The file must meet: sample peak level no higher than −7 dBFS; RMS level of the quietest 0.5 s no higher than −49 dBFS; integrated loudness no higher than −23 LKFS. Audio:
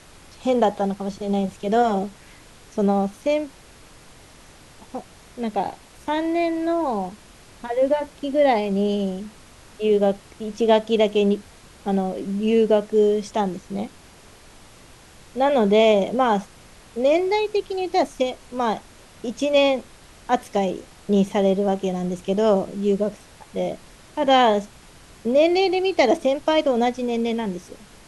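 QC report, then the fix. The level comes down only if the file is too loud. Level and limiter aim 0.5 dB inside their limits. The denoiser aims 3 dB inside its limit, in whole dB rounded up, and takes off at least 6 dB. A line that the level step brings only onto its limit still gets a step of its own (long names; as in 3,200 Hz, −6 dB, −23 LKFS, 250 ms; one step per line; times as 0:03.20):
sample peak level −4.5 dBFS: out of spec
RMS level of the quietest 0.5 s −48 dBFS: out of spec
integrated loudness −21.5 LKFS: out of spec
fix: level −2 dB
brickwall limiter −7.5 dBFS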